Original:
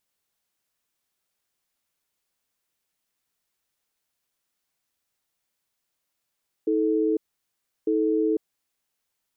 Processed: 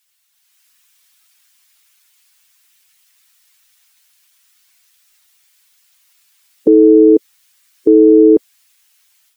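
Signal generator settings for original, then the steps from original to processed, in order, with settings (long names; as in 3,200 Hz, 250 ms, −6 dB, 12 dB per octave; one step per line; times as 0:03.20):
tone pair in a cadence 319 Hz, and 436 Hz, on 0.50 s, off 0.70 s, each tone −22.5 dBFS 2.03 s
spectral dynamics exaggerated over time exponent 1.5
automatic gain control gain up to 8.5 dB
boost into a limiter +18 dB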